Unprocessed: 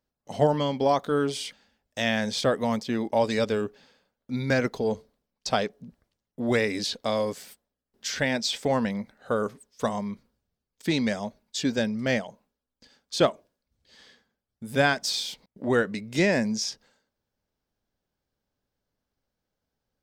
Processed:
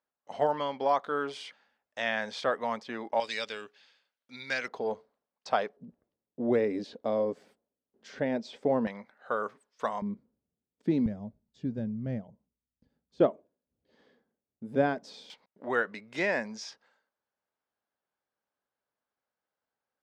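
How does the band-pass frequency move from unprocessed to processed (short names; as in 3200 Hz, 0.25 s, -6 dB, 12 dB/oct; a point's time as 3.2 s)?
band-pass, Q 0.92
1200 Hz
from 3.2 s 2900 Hz
from 4.68 s 970 Hz
from 5.77 s 390 Hz
from 8.87 s 1200 Hz
from 10.02 s 270 Hz
from 11.06 s 100 Hz
from 13.2 s 360 Hz
from 15.3 s 1200 Hz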